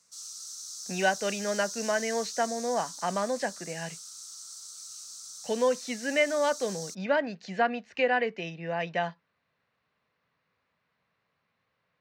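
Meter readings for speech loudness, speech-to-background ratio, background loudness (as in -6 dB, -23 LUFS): -30.0 LUFS, 9.0 dB, -39.0 LUFS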